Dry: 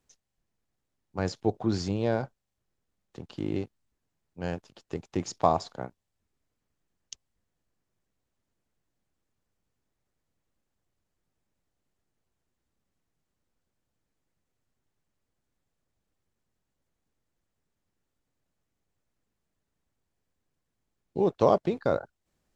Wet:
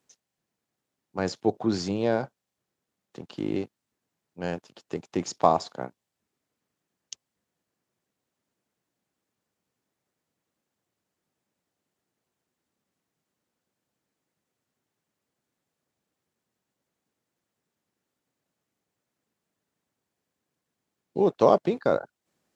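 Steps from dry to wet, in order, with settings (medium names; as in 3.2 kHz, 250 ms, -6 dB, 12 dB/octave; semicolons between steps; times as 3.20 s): high-pass 160 Hz 12 dB/octave; trim +3 dB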